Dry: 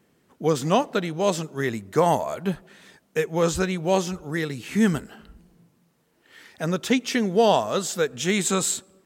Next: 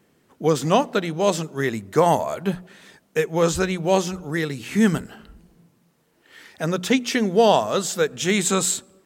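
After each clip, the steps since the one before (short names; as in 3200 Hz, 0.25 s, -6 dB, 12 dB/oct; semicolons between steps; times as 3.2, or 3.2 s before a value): notches 60/120/180/240 Hz; gain +2.5 dB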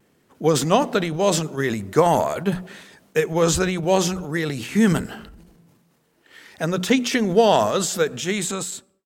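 ending faded out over 1.13 s; vibrato 0.48 Hz 15 cents; transient shaper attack +3 dB, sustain +8 dB; gain -1 dB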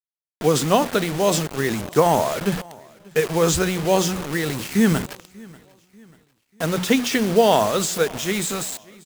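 bit-crush 5-bit; feedback echo 0.59 s, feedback 44%, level -24 dB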